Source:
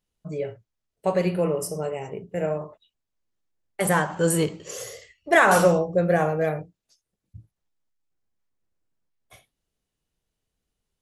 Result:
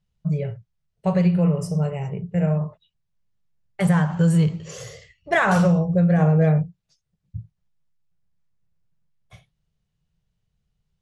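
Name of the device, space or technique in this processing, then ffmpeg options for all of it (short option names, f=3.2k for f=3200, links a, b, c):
jukebox: -filter_complex "[0:a]lowpass=6.2k,lowshelf=f=210:t=q:w=3:g=8.5,acompressor=threshold=-14dB:ratio=6,asettb=1/sr,asplit=3[a][b][c];[a]atrim=end=6.184[d];[b]atrim=start=6.18:end=6.58,asetpts=PTS-STARTPTS,afade=t=in:d=0.004:c=qsin,afade=t=out:st=0.396:d=0.004:c=qsin,equalizer=f=370:t=o:w=1.4:g=6.5[e];[c]atrim=start=6.576[f];[d][e]acrossfade=d=0.004:c1=hsin:c2=qsin[g];[g][f]acrossfade=d=0.004:c1=qsin:c2=hsin"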